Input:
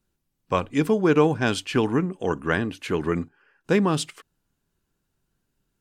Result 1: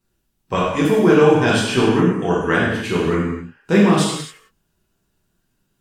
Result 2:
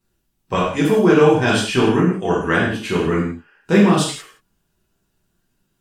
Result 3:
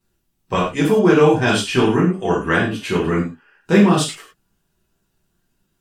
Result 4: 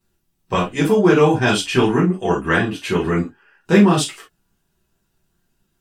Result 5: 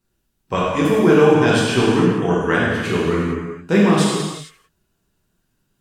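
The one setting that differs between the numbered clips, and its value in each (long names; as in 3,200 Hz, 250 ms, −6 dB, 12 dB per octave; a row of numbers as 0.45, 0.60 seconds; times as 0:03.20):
reverb whose tail is shaped and stops, gate: 310, 210, 140, 90, 490 milliseconds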